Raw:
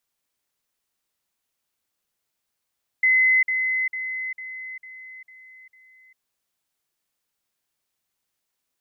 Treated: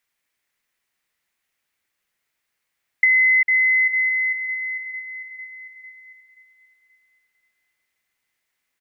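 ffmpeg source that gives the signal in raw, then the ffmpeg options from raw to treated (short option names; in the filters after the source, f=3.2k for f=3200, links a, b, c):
-f lavfi -i "aevalsrc='pow(10,(-14.5-6*floor(t/0.45))/20)*sin(2*PI*2040*t)*clip(min(mod(t,0.45),0.4-mod(t,0.45))/0.005,0,1)':d=3.15:s=44100"
-filter_complex "[0:a]equalizer=f=2k:t=o:w=0.89:g=11,acompressor=threshold=-15dB:ratio=6,asplit=2[a][b];[b]adelay=530,lowpass=f=2k:p=1,volume=-7.5dB,asplit=2[c][d];[d]adelay=530,lowpass=f=2k:p=1,volume=0.52,asplit=2[e][f];[f]adelay=530,lowpass=f=2k:p=1,volume=0.52,asplit=2[g][h];[h]adelay=530,lowpass=f=2k:p=1,volume=0.52,asplit=2[i][j];[j]adelay=530,lowpass=f=2k:p=1,volume=0.52,asplit=2[k][l];[l]adelay=530,lowpass=f=2k:p=1,volume=0.52[m];[a][c][e][g][i][k][m]amix=inputs=7:normalize=0"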